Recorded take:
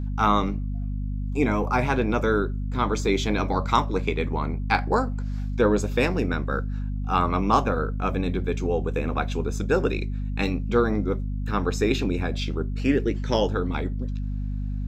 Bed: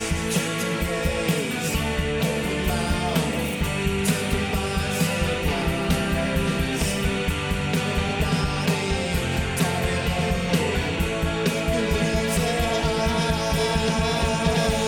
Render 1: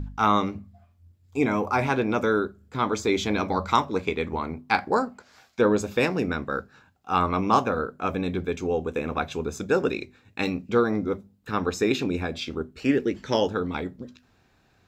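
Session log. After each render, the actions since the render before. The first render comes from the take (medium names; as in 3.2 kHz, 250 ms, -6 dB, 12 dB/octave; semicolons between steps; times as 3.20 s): de-hum 50 Hz, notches 5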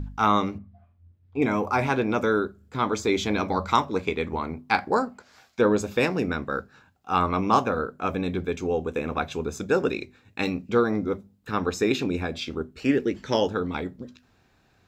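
0.58–1.42 s: distance through air 370 m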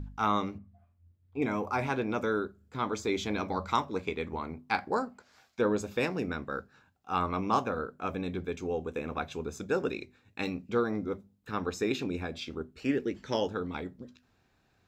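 trim -7 dB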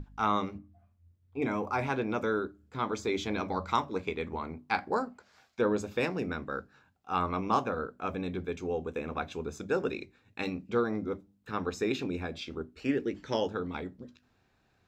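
treble shelf 7.5 kHz -5.5 dB; hum notches 50/100/150/200/250/300 Hz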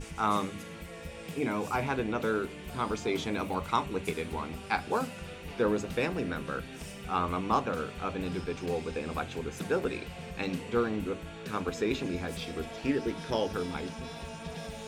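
add bed -19 dB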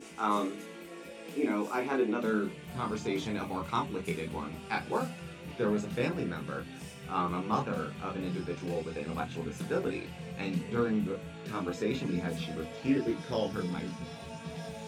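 high-pass sweep 290 Hz -> 130 Hz, 2.03–2.66 s; chorus voices 6, 0.17 Hz, delay 26 ms, depth 3.1 ms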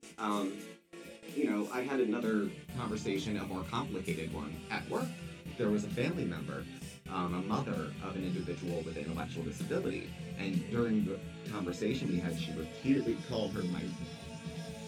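gate with hold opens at -36 dBFS; peaking EQ 920 Hz -7.5 dB 1.9 oct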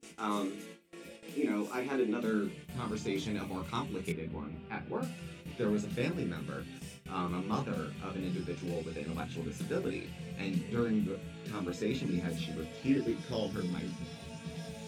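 4.12–5.03 s: distance through air 470 m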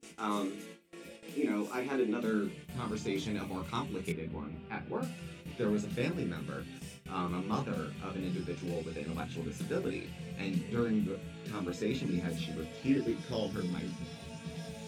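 no audible change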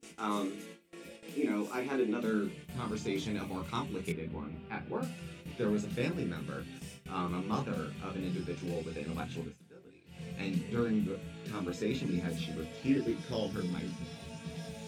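9.39–10.23 s: dip -21 dB, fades 0.18 s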